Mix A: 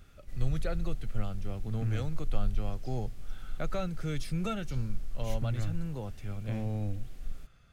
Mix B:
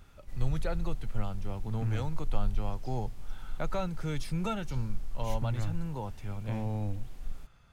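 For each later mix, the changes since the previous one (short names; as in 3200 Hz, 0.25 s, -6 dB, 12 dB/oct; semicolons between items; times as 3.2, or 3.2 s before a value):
master: add bell 920 Hz +13 dB 0.32 oct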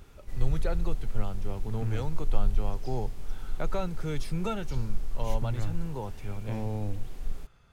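background +5.0 dB; master: add bell 410 Hz +6 dB 0.46 oct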